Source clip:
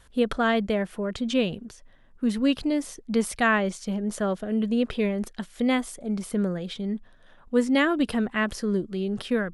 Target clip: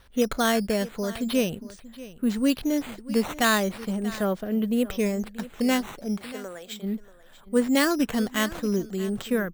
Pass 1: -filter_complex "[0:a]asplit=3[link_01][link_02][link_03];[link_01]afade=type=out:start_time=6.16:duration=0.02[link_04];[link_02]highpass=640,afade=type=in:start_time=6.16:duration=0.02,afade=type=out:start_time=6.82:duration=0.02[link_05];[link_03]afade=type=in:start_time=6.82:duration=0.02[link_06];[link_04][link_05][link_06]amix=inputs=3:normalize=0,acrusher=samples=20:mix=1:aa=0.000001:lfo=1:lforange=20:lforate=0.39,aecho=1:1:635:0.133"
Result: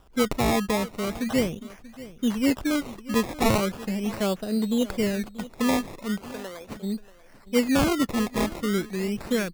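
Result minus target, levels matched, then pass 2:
sample-and-hold swept by an LFO: distortion +8 dB
-filter_complex "[0:a]asplit=3[link_01][link_02][link_03];[link_01]afade=type=out:start_time=6.16:duration=0.02[link_04];[link_02]highpass=640,afade=type=in:start_time=6.16:duration=0.02,afade=type=out:start_time=6.82:duration=0.02[link_05];[link_03]afade=type=in:start_time=6.82:duration=0.02[link_06];[link_04][link_05][link_06]amix=inputs=3:normalize=0,acrusher=samples=6:mix=1:aa=0.000001:lfo=1:lforange=6:lforate=0.39,aecho=1:1:635:0.133"

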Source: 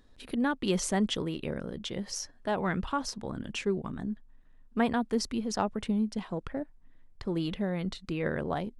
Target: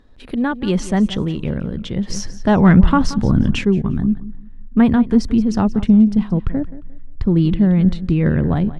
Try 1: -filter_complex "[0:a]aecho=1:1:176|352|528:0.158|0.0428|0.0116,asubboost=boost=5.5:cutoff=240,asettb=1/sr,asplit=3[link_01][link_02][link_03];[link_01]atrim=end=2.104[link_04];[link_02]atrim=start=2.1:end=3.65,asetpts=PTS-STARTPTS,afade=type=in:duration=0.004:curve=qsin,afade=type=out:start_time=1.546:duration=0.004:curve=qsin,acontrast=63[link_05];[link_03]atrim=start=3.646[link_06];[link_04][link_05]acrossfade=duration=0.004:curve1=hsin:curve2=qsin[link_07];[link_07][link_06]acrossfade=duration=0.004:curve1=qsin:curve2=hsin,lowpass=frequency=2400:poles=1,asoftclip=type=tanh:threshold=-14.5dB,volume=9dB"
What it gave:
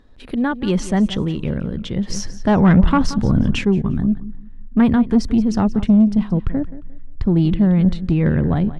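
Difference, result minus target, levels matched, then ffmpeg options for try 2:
soft clipping: distortion +13 dB
-filter_complex "[0:a]aecho=1:1:176|352|528:0.158|0.0428|0.0116,asubboost=boost=5.5:cutoff=240,asettb=1/sr,asplit=3[link_01][link_02][link_03];[link_01]atrim=end=2.104[link_04];[link_02]atrim=start=2.1:end=3.65,asetpts=PTS-STARTPTS,afade=type=in:duration=0.004:curve=qsin,afade=type=out:start_time=1.546:duration=0.004:curve=qsin,acontrast=63[link_05];[link_03]atrim=start=3.646[link_06];[link_04][link_05]acrossfade=duration=0.004:curve1=hsin:curve2=qsin[link_07];[link_07][link_06]acrossfade=duration=0.004:curve1=qsin:curve2=hsin,lowpass=frequency=2400:poles=1,asoftclip=type=tanh:threshold=-6.5dB,volume=9dB"

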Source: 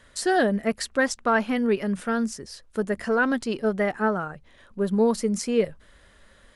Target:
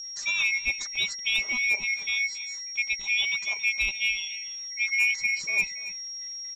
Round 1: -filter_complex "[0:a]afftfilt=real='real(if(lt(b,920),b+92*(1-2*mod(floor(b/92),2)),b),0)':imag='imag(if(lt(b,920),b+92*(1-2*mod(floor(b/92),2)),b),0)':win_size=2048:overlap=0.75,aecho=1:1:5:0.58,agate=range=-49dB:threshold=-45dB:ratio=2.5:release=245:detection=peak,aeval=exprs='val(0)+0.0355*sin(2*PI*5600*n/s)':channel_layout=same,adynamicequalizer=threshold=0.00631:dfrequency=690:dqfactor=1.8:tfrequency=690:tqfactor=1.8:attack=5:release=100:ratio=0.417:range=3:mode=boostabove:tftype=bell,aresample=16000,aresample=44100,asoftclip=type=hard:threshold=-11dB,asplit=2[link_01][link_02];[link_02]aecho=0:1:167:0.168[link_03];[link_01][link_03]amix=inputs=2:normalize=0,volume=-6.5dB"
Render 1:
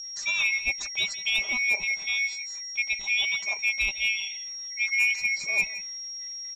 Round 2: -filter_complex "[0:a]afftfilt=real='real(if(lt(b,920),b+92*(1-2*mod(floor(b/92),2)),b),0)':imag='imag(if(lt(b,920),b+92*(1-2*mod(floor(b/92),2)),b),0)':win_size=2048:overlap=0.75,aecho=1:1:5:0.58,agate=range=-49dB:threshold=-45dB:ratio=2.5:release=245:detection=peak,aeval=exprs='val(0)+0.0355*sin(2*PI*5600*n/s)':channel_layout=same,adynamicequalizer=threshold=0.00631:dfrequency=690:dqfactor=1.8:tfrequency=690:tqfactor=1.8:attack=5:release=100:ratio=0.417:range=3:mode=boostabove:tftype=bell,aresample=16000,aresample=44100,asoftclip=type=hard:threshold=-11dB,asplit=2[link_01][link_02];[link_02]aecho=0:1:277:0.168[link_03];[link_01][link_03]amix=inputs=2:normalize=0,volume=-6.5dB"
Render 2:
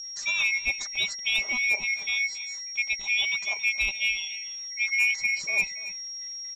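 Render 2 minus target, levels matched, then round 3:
500 Hz band +3.5 dB
-filter_complex "[0:a]afftfilt=real='real(if(lt(b,920),b+92*(1-2*mod(floor(b/92),2)),b),0)':imag='imag(if(lt(b,920),b+92*(1-2*mod(floor(b/92),2)),b),0)':win_size=2048:overlap=0.75,aecho=1:1:5:0.58,agate=range=-49dB:threshold=-45dB:ratio=2.5:release=245:detection=peak,aeval=exprs='val(0)+0.0355*sin(2*PI*5600*n/s)':channel_layout=same,aresample=16000,aresample=44100,asoftclip=type=hard:threshold=-11dB,asplit=2[link_01][link_02];[link_02]aecho=0:1:277:0.168[link_03];[link_01][link_03]amix=inputs=2:normalize=0,volume=-6.5dB"

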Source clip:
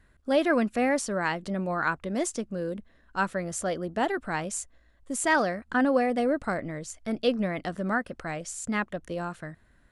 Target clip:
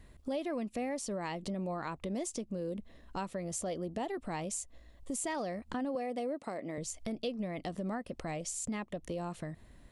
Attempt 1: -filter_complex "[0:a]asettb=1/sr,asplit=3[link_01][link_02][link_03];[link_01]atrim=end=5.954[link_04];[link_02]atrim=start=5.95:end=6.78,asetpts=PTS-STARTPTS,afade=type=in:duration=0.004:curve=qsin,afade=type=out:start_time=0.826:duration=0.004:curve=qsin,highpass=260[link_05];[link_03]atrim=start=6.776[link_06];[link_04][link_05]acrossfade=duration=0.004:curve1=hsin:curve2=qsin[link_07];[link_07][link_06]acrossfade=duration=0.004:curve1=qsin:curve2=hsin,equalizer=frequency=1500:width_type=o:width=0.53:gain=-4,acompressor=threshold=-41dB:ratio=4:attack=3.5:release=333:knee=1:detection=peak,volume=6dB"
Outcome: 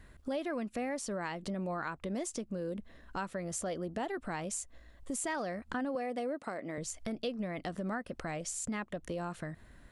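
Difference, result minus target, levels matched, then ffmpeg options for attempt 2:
2,000 Hz band +4.0 dB
-filter_complex "[0:a]asettb=1/sr,asplit=3[link_01][link_02][link_03];[link_01]atrim=end=5.954[link_04];[link_02]atrim=start=5.95:end=6.78,asetpts=PTS-STARTPTS,afade=type=in:duration=0.004:curve=qsin,afade=type=out:start_time=0.826:duration=0.004:curve=qsin,highpass=260[link_05];[link_03]atrim=start=6.776[link_06];[link_04][link_05]acrossfade=duration=0.004:curve1=hsin:curve2=qsin[link_07];[link_07][link_06]acrossfade=duration=0.004:curve1=qsin:curve2=hsin,equalizer=frequency=1500:width_type=o:width=0.53:gain=-14,acompressor=threshold=-41dB:ratio=4:attack=3.5:release=333:knee=1:detection=peak,volume=6dB"

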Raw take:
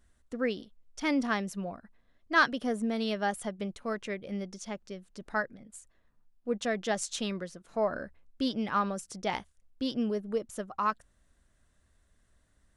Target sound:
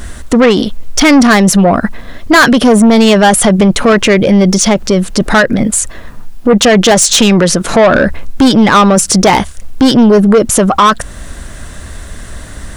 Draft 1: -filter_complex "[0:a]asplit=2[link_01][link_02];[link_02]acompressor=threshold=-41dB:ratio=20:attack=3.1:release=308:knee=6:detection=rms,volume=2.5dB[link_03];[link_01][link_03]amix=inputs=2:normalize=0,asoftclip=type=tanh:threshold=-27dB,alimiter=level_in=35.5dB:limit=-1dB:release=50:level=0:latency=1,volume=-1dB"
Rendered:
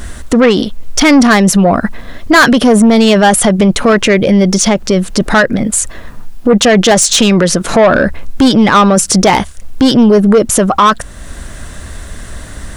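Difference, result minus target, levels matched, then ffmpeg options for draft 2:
downward compressor: peak gain reduction +10 dB
-filter_complex "[0:a]asplit=2[link_01][link_02];[link_02]acompressor=threshold=-30.5dB:ratio=20:attack=3.1:release=308:knee=6:detection=rms,volume=2.5dB[link_03];[link_01][link_03]amix=inputs=2:normalize=0,asoftclip=type=tanh:threshold=-27dB,alimiter=level_in=35.5dB:limit=-1dB:release=50:level=0:latency=1,volume=-1dB"

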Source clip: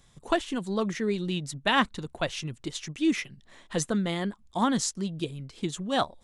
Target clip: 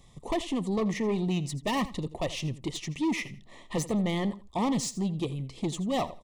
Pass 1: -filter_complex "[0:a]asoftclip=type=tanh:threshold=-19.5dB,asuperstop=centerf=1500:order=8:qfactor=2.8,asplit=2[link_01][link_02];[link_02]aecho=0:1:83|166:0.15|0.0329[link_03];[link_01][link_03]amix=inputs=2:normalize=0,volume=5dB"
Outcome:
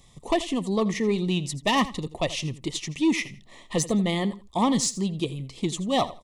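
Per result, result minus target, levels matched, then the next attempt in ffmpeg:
soft clipping: distortion −8 dB; 4,000 Hz band +3.0 dB
-filter_complex "[0:a]asoftclip=type=tanh:threshold=-28.5dB,asuperstop=centerf=1500:order=8:qfactor=2.8,asplit=2[link_01][link_02];[link_02]aecho=0:1:83|166:0.15|0.0329[link_03];[link_01][link_03]amix=inputs=2:normalize=0,volume=5dB"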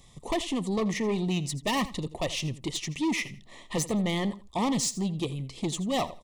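4,000 Hz band +3.5 dB
-filter_complex "[0:a]asoftclip=type=tanh:threshold=-28.5dB,asuperstop=centerf=1500:order=8:qfactor=2.8,highshelf=frequency=2000:gain=-5.5,asplit=2[link_01][link_02];[link_02]aecho=0:1:83|166:0.15|0.0329[link_03];[link_01][link_03]amix=inputs=2:normalize=0,volume=5dB"

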